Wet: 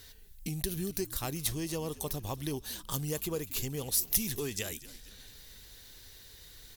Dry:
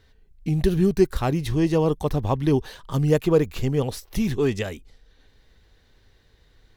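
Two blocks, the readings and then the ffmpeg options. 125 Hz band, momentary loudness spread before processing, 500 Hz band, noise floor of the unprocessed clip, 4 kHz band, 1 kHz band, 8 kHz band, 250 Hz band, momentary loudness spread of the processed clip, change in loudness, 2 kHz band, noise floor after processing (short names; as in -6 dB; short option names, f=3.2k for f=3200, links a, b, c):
-15.0 dB, 9 LU, -16.5 dB, -59 dBFS, -1.0 dB, -13.0 dB, +8.0 dB, -15.5 dB, 21 LU, -10.5 dB, -8.5 dB, -53 dBFS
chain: -filter_complex "[0:a]aemphasis=mode=production:type=cd,acompressor=threshold=-42dB:ratio=2.5,crystalizer=i=4:c=0,asplit=5[a][b][c][d][e];[b]adelay=232,afreqshift=-77,volume=-18dB[f];[c]adelay=464,afreqshift=-154,volume=-23.5dB[g];[d]adelay=696,afreqshift=-231,volume=-29dB[h];[e]adelay=928,afreqshift=-308,volume=-34.5dB[i];[a][f][g][h][i]amix=inputs=5:normalize=0"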